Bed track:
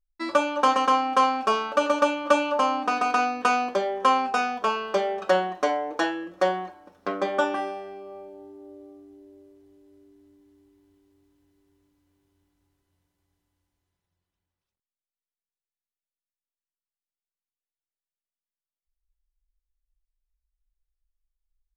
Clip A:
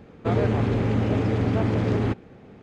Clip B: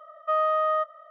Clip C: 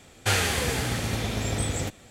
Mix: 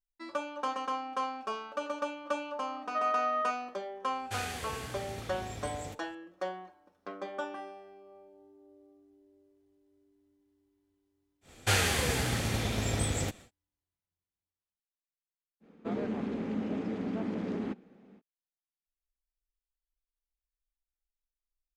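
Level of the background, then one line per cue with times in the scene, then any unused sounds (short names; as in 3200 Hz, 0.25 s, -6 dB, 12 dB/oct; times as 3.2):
bed track -13.5 dB
2.67 add B -4.5 dB + low shelf 480 Hz -12 dB
4.05 add C -14.5 dB
11.41 add C -3 dB, fades 0.10 s
15.6 add A -13 dB, fades 0.05 s + resonant low shelf 150 Hz -10 dB, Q 3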